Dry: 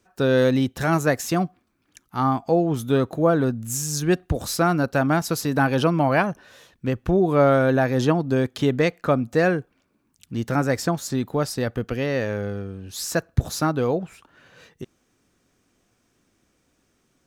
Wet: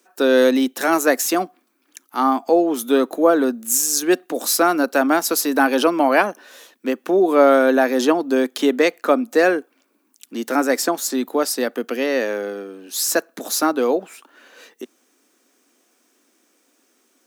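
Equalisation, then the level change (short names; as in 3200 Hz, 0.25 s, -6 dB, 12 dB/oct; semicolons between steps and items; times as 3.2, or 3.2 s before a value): steep high-pass 240 Hz 48 dB/oct; high shelf 9100 Hz +11.5 dB; +4.5 dB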